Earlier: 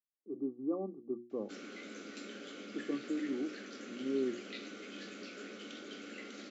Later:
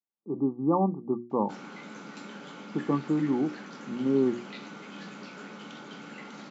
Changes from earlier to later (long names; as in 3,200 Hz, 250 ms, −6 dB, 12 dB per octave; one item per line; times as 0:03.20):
speech +8.5 dB
master: remove phaser with its sweep stopped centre 380 Hz, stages 4